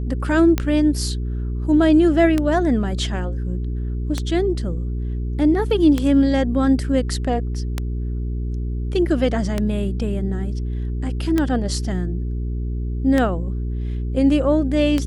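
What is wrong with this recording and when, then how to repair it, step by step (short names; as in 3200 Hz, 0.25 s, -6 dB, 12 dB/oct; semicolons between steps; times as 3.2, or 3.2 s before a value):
hum 60 Hz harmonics 7 -24 dBFS
tick 33 1/3 rpm -7 dBFS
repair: de-click; de-hum 60 Hz, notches 7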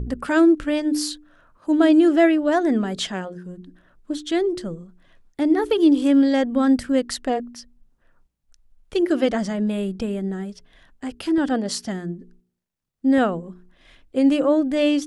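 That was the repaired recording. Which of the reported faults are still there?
none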